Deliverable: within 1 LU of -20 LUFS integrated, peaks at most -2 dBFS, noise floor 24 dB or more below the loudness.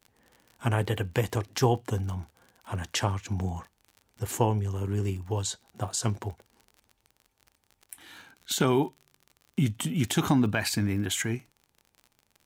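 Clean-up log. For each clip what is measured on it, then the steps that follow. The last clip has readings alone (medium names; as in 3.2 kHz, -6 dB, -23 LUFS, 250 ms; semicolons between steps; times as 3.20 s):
tick rate 44 per s; loudness -29.0 LUFS; peak level -9.5 dBFS; loudness target -20.0 LUFS
-> de-click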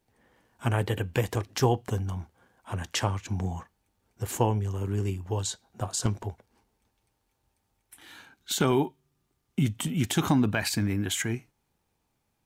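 tick rate 0.16 per s; loudness -29.0 LUFS; peak level -9.5 dBFS; loudness target -20.0 LUFS
-> trim +9 dB; peak limiter -2 dBFS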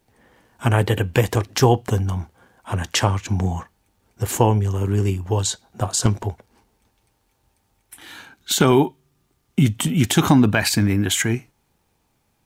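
loudness -20.5 LUFS; peak level -2.0 dBFS; noise floor -68 dBFS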